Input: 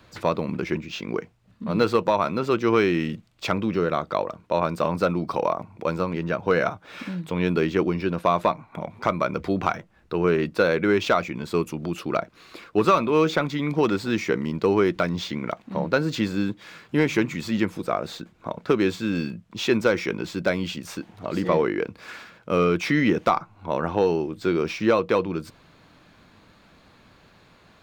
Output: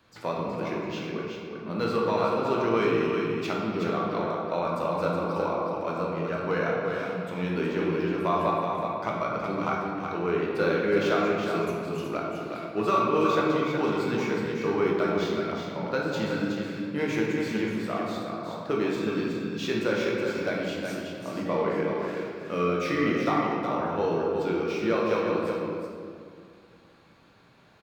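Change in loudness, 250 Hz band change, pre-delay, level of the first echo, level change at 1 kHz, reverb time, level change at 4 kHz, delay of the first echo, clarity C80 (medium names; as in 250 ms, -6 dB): -3.5 dB, -3.5 dB, 14 ms, -5.0 dB, -2.5 dB, 2.2 s, -4.5 dB, 370 ms, -0.5 dB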